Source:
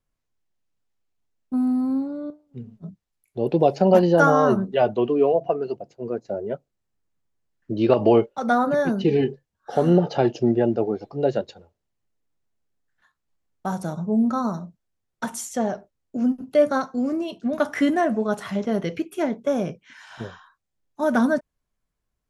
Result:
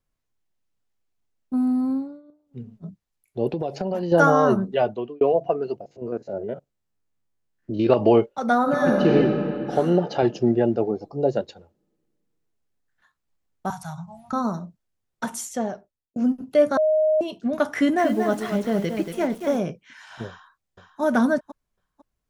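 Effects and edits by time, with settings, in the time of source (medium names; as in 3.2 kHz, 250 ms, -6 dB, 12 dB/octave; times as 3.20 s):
1.90–2.60 s: dip -20 dB, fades 0.32 s
3.48–4.12 s: compression, threshold -23 dBFS
4.72–5.21 s: fade out
5.81–7.87 s: spectrogram pixelated in time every 50 ms
8.61–9.14 s: reverb throw, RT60 2.9 s, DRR -1.5 dB
9.79–10.23 s: bass shelf 180 Hz -9 dB
10.91–11.37 s: high-order bell 2.3 kHz -10.5 dB
13.70–14.33 s: elliptic band-stop 150–780 Hz
15.44–16.16 s: fade out linear
16.77–17.21 s: bleep 622 Hz -16 dBFS
17.75–19.59 s: bit-crushed delay 232 ms, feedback 35%, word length 7-bit, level -6.5 dB
20.27–21.01 s: echo throw 500 ms, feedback 20%, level -7.5 dB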